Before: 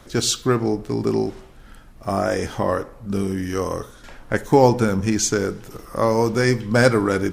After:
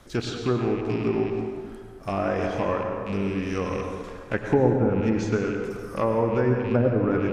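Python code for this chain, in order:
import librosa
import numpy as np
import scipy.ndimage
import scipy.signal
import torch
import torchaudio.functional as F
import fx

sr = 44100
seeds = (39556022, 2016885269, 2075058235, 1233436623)

y = fx.rattle_buzz(x, sr, strikes_db=-31.0, level_db=-23.0)
y = fx.env_lowpass_down(y, sr, base_hz=510.0, full_db=-11.5)
y = fx.rev_plate(y, sr, seeds[0], rt60_s=2.0, hf_ratio=0.5, predelay_ms=85, drr_db=3.0)
y = y * 10.0 ** (-5.0 / 20.0)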